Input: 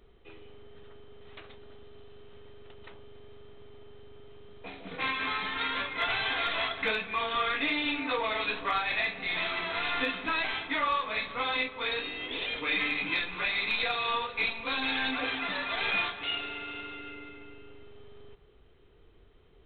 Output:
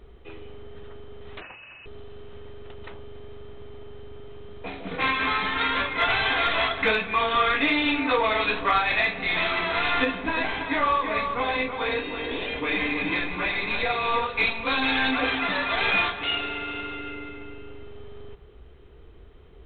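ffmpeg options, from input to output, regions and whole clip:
-filter_complex "[0:a]asettb=1/sr,asplit=3[s0][s1][s2];[s0]atrim=end=1.414[s3];[s1]atrim=start=1.41:end=1.86,asetpts=PTS-STARTPTS,afade=t=in:d=0.004:c=qsin,afade=t=out:st=0.446:d=0.004:c=qsin,highpass=60,highshelf=f=2100:g=10,lowpass=f=2600:t=q:w=0.5098,lowpass=f=2600:t=q:w=0.6013,lowpass=f=2600:t=q:w=0.9,lowpass=f=2600:t=q:w=2.563,afreqshift=-3000[s4];[s2]atrim=start=1.856[s5];[s3][s4]acrossfade=d=0.004:c1=hsin:c2=qsin[s6];[s6][s5]acrossfade=d=0.004:c1=qsin:c2=hsin,asettb=1/sr,asplit=3[s7][s8][s9];[s7]atrim=end=10.044[s10];[s8]atrim=start=10.04:end=14.26,asetpts=PTS-STARTPTS,afade=t=in:d=0.004:c=qsin,afade=t=out:st=4.216:d=0.004:c=qsin,highshelf=f=2100:g=-8.5,bandreject=f=1300:w=14,aecho=1:1:328:0.447,atrim=end_sample=186102[s11];[s9]atrim=start=14.256[s12];[s10][s11]acrossfade=d=0.004:c1=hsin:c2=qsin[s13];[s13][s12]acrossfade=d=0.004:c1=qsin:c2=hsin,equalizer=f=61:w=2.7:g=8,acontrast=89,highshelf=f=3400:g=-7.5,volume=1.19"

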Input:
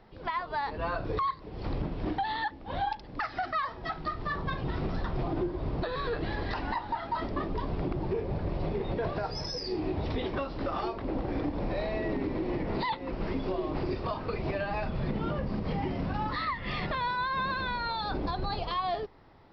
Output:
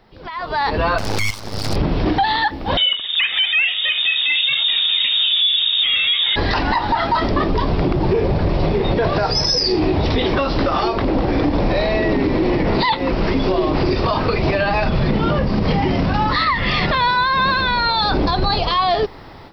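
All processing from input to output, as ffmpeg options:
-filter_complex "[0:a]asettb=1/sr,asplit=3[s0][s1][s2];[s0]atrim=end=0.984[s3];[s1]atrim=start=0.98:end=1.76,asetpts=PTS-STARTPTS,afade=t=in:d=0.004:c=qsin,afade=t=out:st=0.776:d=0.004:c=qsin,equalizer=f=5000:w=2.8:g=15,aeval=exprs='val(0)*sin(2*PI*52*n/s)':c=same,aeval=exprs='abs(val(0))':c=same[s4];[s2]atrim=start=1.756[s5];[s3][s4]acrossfade=d=0.004:c1=hsin:c2=qsin[s6];[s6][s5]acrossfade=d=0.004:c1=qsin:c2=hsin,asettb=1/sr,asplit=3[s7][s8][s9];[s7]atrim=end=2.774[s10];[s8]atrim=start=2.77:end=6.36,asetpts=PTS-STARTPTS,afade=t=in:d=0.004:c=qsin,afade=t=out:st=3.586:d=0.004:c=qsin,highpass=73,lowpass=f=3200:t=q:w=0.5098,lowpass=f=3200:t=q:w=0.6013,lowpass=f=3200:t=q:w=0.9,lowpass=f=3200:t=q:w=2.563,afreqshift=-3800[s11];[s9]atrim=start=6.356[s12];[s10][s11]acrossfade=d=0.004:c1=hsin:c2=qsin[s13];[s13][s12]acrossfade=d=0.004:c1=qsin:c2=hsin,highshelf=f=3400:g=9,alimiter=level_in=1.58:limit=0.0631:level=0:latency=1:release=65,volume=0.631,dynaudnorm=f=330:g=3:m=5.62,volume=1.5"

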